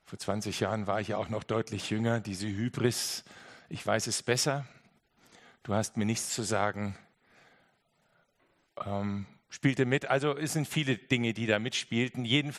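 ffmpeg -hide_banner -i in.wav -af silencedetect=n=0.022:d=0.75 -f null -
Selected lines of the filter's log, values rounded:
silence_start: 4.61
silence_end: 5.69 | silence_duration: 1.08
silence_start: 6.92
silence_end: 8.78 | silence_duration: 1.86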